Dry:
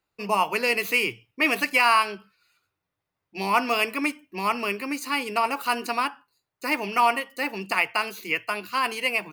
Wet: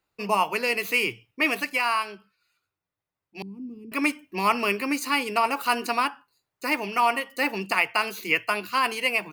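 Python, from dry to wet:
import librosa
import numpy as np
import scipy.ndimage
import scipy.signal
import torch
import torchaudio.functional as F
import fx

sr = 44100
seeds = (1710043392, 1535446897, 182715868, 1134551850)

y = fx.rider(x, sr, range_db=10, speed_s=0.5)
y = fx.cheby2_lowpass(y, sr, hz=600.0, order=4, stop_db=40, at=(3.42, 3.92))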